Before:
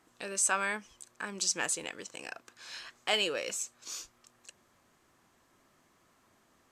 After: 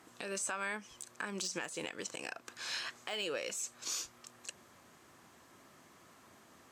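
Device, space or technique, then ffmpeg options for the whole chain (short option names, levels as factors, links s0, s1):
podcast mastering chain: -af "highpass=74,deesser=0.75,acompressor=threshold=0.00708:ratio=2,alimiter=level_in=2.51:limit=0.0631:level=0:latency=1:release=207,volume=0.398,volume=2.37" -ar 48000 -c:a libmp3lame -b:a 128k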